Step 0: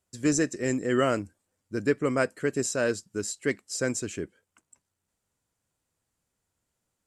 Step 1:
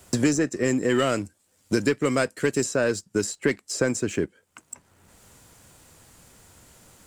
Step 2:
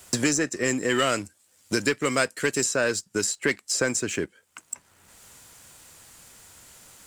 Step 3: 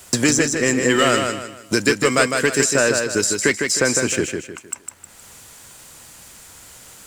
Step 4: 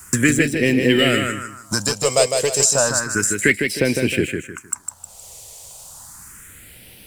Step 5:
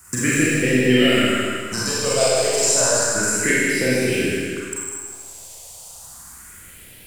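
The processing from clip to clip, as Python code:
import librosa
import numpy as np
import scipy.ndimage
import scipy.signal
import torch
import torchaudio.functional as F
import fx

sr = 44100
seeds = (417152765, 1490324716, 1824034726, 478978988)

y1 = fx.leveller(x, sr, passes=1)
y1 = fx.band_squash(y1, sr, depth_pct=100)
y2 = fx.tilt_shelf(y1, sr, db=-5.0, hz=810.0)
y3 = fx.echo_feedback(y2, sr, ms=155, feedback_pct=35, wet_db=-5.0)
y3 = F.gain(torch.from_numpy(y3), 6.0).numpy()
y4 = fx.phaser_stages(y3, sr, stages=4, low_hz=250.0, high_hz=1200.0, hz=0.32, feedback_pct=30)
y4 = F.gain(torch.from_numpy(y4), 3.5).numpy()
y5 = y4 + 10.0 ** (-13.0 / 20.0) * np.pad(y4, (int(323 * sr / 1000.0), 0))[:len(y4)]
y5 = fx.rev_schroeder(y5, sr, rt60_s=1.5, comb_ms=32, drr_db=-6.5)
y5 = F.gain(torch.from_numpy(y5), -7.5).numpy()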